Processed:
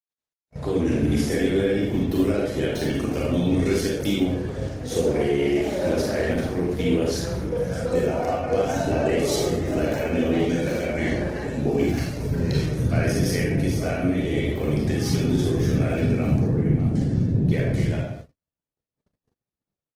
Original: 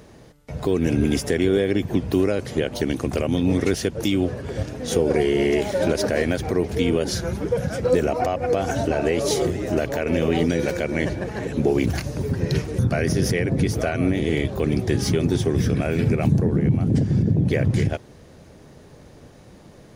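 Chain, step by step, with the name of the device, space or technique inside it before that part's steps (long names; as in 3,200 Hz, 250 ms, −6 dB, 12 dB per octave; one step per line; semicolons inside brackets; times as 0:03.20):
speakerphone in a meeting room (convolution reverb RT60 0.70 s, pre-delay 30 ms, DRR −3 dB; automatic gain control gain up to 7 dB; noise gate −27 dBFS, range −53 dB; level −8.5 dB; Opus 16 kbit/s 48,000 Hz)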